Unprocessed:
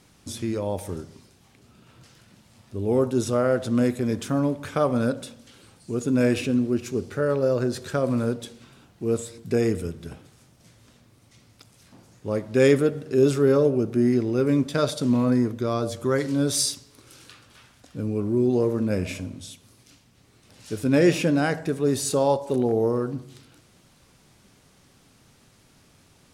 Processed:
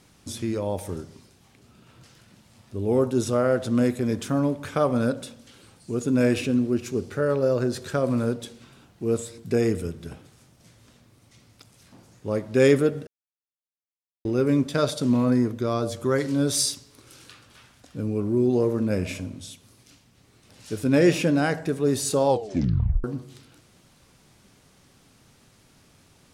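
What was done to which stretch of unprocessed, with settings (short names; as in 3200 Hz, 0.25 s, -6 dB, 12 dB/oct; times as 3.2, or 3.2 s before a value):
13.07–14.25 mute
22.28 tape stop 0.76 s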